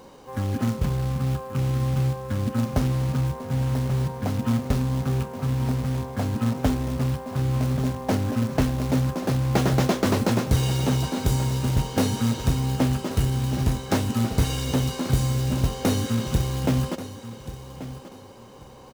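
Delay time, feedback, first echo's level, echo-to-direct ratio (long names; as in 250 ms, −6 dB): 1,134 ms, 24%, −14.0 dB, −13.5 dB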